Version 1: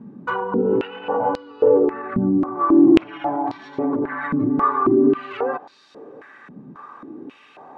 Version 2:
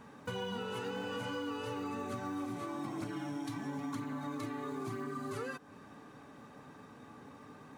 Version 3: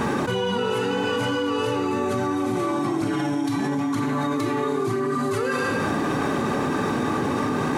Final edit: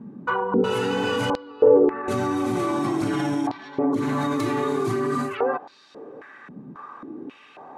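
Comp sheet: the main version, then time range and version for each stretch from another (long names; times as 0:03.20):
1
0:00.64–0:01.30: punch in from 3
0:02.08–0:03.47: punch in from 3
0:03.99–0:05.28: punch in from 3, crossfade 0.16 s
not used: 2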